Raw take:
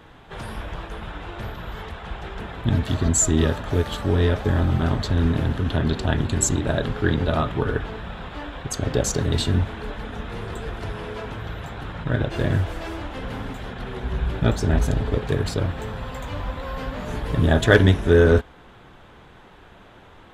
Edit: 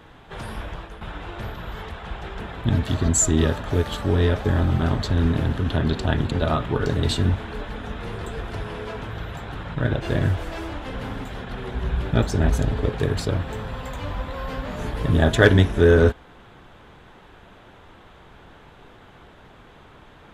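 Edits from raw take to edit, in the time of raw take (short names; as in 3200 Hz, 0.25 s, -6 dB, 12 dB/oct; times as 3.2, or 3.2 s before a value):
0.65–1.01 fade out, to -8 dB
6.31–7.17 cut
7.72–9.15 cut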